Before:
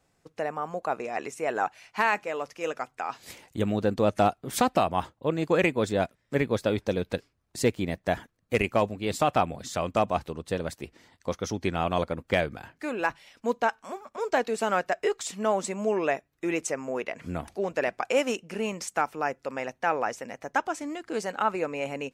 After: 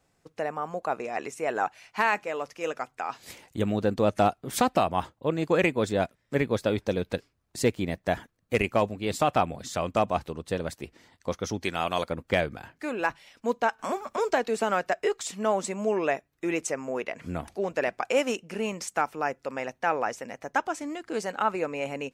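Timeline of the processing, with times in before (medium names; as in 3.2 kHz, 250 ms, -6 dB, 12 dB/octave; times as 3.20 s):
11.63–12.10 s: tilt EQ +2.5 dB/octave
13.79–14.95 s: three bands compressed up and down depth 70%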